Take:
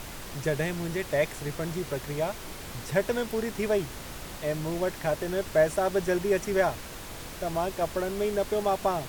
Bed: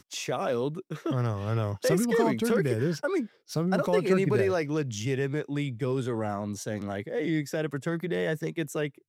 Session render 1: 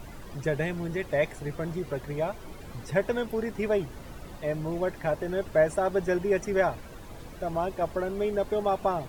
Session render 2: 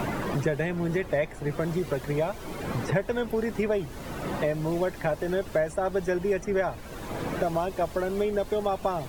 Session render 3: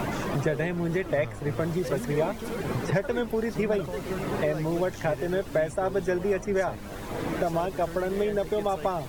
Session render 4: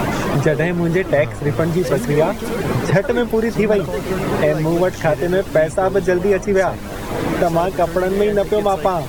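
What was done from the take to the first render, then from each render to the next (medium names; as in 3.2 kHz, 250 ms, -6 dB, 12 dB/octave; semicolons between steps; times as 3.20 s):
noise reduction 12 dB, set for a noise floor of -41 dBFS
three bands compressed up and down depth 100%
add bed -10 dB
trim +10.5 dB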